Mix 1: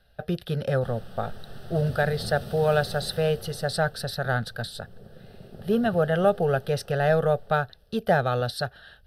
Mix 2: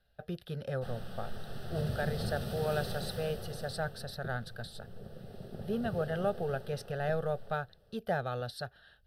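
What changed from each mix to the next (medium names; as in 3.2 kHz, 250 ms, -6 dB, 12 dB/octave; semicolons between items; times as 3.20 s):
speech -11.0 dB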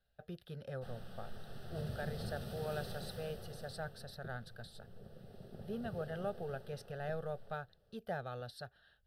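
speech -8.0 dB; background -7.0 dB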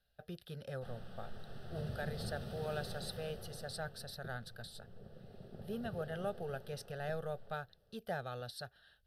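background: add low-pass 2.1 kHz 6 dB/octave; master: add treble shelf 3 kHz +7.5 dB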